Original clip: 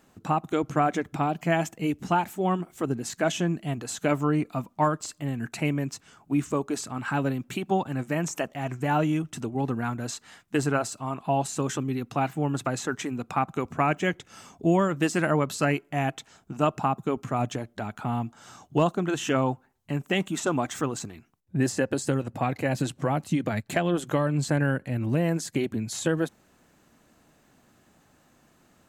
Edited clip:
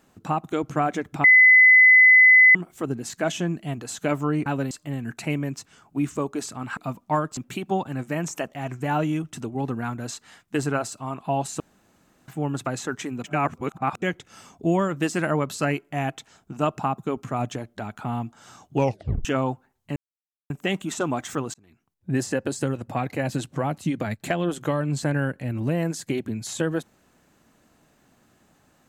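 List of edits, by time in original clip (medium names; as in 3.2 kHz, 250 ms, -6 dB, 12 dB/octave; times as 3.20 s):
1.24–2.55 s: bleep 2.02 kHz -9.5 dBFS
4.46–5.06 s: swap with 7.12–7.37 s
11.60–12.28 s: room tone
13.24–14.02 s: reverse
18.76 s: tape stop 0.49 s
19.96 s: insert silence 0.54 s
21.00–21.56 s: fade in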